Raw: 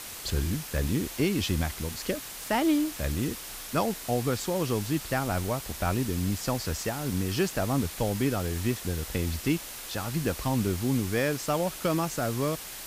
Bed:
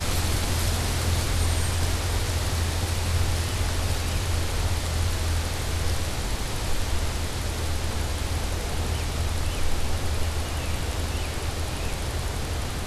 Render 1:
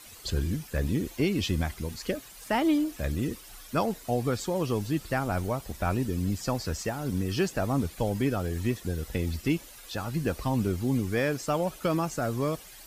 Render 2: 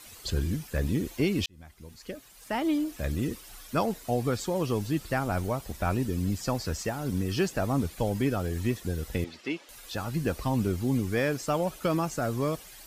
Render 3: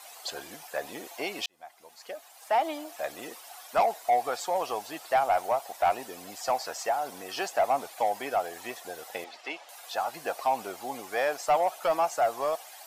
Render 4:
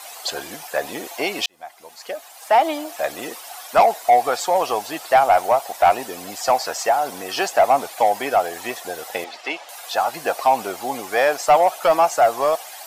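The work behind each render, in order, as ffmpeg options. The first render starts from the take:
ffmpeg -i in.wav -af "afftdn=noise_reduction=12:noise_floor=-41" out.wav
ffmpeg -i in.wav -filter_complex "[0:a]asettb=1/sr,asplit=3[link_01][link_02][link_03];[link_01]atrim=end=9.244[link_04];[link_02]atrim=start=9.24:end=9.69,asetpts=PTS-STARTPTS,afade=type=in:duration=0.004:curve=qsin,afade=type=out:start_time=0.446:duration=0.004:curve=qsin,highpass=400,lowpass=4300[link_05];[link_03]atrim=start=9.686[link_06];[link_04][link_05]acrossfade=duration=0.004:curve1=hsin:curve2=qsin[link_07];[link_07][link_06]acrossfade=duration=0.004:curve1=qsin:curve2=hsin,asplit=2[link_08][link_09];[link_08]atrim=end=1.46,asetpts=PTS-STARTPTS,afade=type=out:start_time=1.456:duration=0.004:curve=hsin[link_10];[link_09]atrim=start=1.46,asetpts=PTS-STARTPTS,afade=type=in:duration=1.7[link_11];[link_10][link_11]concat=n=2:v=0:a=1" out.wav
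ffmpeg -i in.wav -af "highpass=frequency=730:width_type=q:width=4.9,asoftclip=type=tanh:threshold=-16.5dB" out.wav
ffmpeg -i in.wav -af "volume=10dB" out.wav

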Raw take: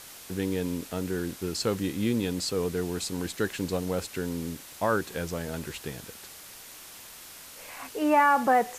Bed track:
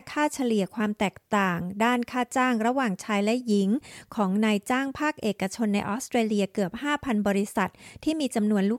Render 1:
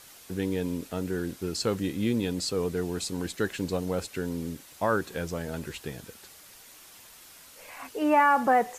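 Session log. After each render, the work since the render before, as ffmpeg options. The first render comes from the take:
ffmpeg -i in.wav -af "afftdn=noise_reduction=6:noise_floor=-47" out.wav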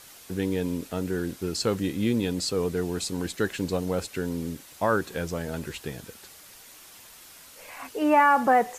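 ffmpeg -i in.wav -af "volume=2dB" out.wav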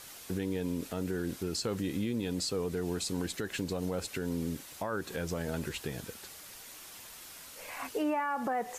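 ffmpeg -i in.wav -af "acompressor=threshold=-26dB:ratio=6,alimiter=limit=-24dB:level=0:latency=1:release=111" out.wav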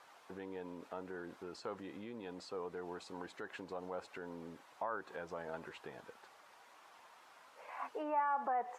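ffmpeg -i in.wav -af "bandpass=frequency=930:width_type=q:width=1.7:csg=0" out.wav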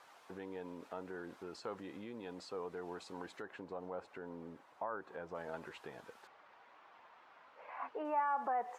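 ffmpeg -i in.wav -filter_complex "[0:a]asettb=1/sr,asplit=3[link_01][link_02][link_03];[link_01]atrim=end=3.424[link_04];[link_02]atrim=start=3.42:end=5.35,asetpts=PTS-STARTPTS,afade=type=in:duration=0.004:curve=qsin,afade=type=out:start_time=1.926:duration=0.004:curve=qsin,highshelf=frequency=2600:gain=-11.5[link_05];[link_03]atrim=start=5.346[link_06];[link_04][link_05]acrossfade=duration=0.004:curve1=hsin:curve2=qsin[link_07];[link_07][link_06]acrossfade=duration=0.004:curve1=qsin:curve2=hsin,asettb=1/sr,asplit=3[link_08][link_09][link_10];[link_08]atrim=end=6.274[link_11];[link_09]atrim=start=6.27:end=8.05,asetpts=PTS-STARTPTS,afade=type=in:duration=0.004:curve=qsin,afade=type=out:start_time=1.776:duration=0.004:curve=qsin,lowpass=2800[link_12];[link_10]atrim=start=8.046[link_13];[link_11][link_12]acrossfade=duration=0.004:curve1=hsin:curve2=qsin[link_14];[link_14][link_13]acrossfade=duration=0.004:curve1=qsin:curve2=hsin" out.wav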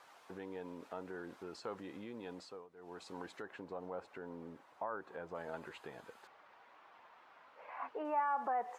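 ffmpeg -i in.wav -filter_complex "[0:a]asettb=1/sr,asplit=3[link_01][link_02][link_03];[link_01]atrim=end=5.124[link_04];[link_02]atrim=start=5.12:end=6.24,asetpts=PTS-STARTPTS,afade=type=in:duration=0.004:curve=qsin,afade=type=out:start_time=1.116:duration=0.004:curve=qsin,bandreject=frequency=5600:width=11[link_05];[link_03]atrim=start=6.236[link_06];[link_04][link_05]acrossfade=duration=0.004:curve1=hsin:curve2=qsin[link_07];[link_07][link_06]acrossfade=duration=0.004:curve1=qsin:curve2=hsin,asplit=3[link_08][link_09][link_10];[link_08]atrim=end=2.68,asetpts=PTS-STARTPTS,afade=type=out:start_time=2.34:duration=0.34:silence=0.141254[link_11];[link_09]atrim=start=2.68:end=2.74,asetpts=PTS-STARTPTS,volume=-17dB[link_12];[link_10]atrim=start=2.74,asetpts=PTS-STARTPTS,afade=type=in:duration=0.34:silence=0.141254[link_13];[link_11][link_12][link_13]concat=n=3:v=0:a=1" out.wav

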